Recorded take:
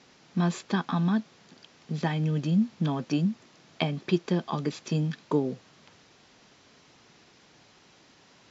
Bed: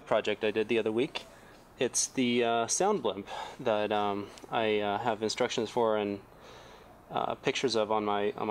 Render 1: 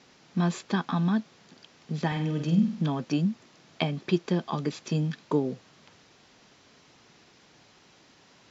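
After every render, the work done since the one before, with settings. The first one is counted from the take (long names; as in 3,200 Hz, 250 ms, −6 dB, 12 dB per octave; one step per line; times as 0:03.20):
0:02.07–0:02.82: flutter between parallel walls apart 8.3 metres, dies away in 0.48 s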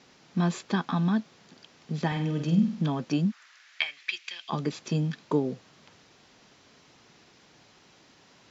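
0:03.30–0:04.48: high-pass with resonance 1,400 Hz → 2,700 Hz, resonance Q 2.9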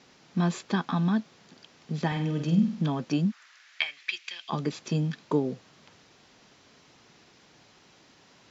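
no processing that can be heard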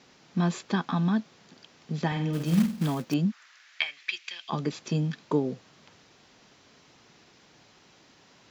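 0:02.33–0:03.14: floating-point word with a short mantissa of 2 bits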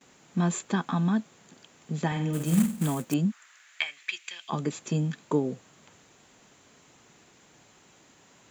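noise gate with hold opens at −50 dBFS
high shelf with overshoot 6,300 Hz +6.5 dB, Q 3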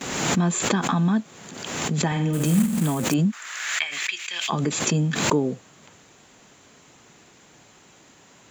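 in parallel at −1.5 dB: brickwall limiter −21 dBFS, peak gain reduction 10 dB
on the sum: background raised ahead of every attack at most 40 dB per second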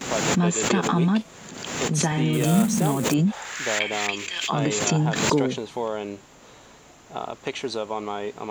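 mix in bed −0.5 dB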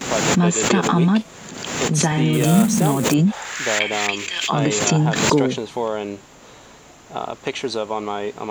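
level +4.5 dB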